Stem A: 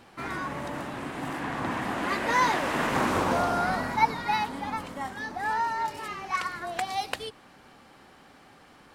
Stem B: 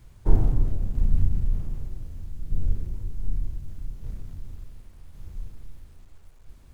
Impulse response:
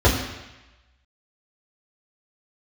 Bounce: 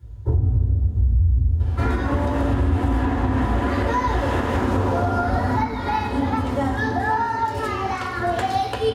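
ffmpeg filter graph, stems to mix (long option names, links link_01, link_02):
-filter_complex "[0:a]acompressor=threshold=-32dB:ratio=6,adelay=1600,volume=3dB,asplit=2[link_01][link_02];[link_02]volume=-13dB[link_03];[1:a]volume=-11dB,asplit=2[link_04][link_05];[link_05]volume=-9.5dB[link_06];[2:a]atrim=start_sample=2205[link_07];[link_03][link_06]amix=inputs=2:normalize=0[link_08];[link_08][link_07]afir=irnorm=-1:irlink=0[link_09];[link_01][link_04][link_09]amix=inputs=3:normalize=0,alimiter=limit=-11.5dB:level=0:latency=1:release=211"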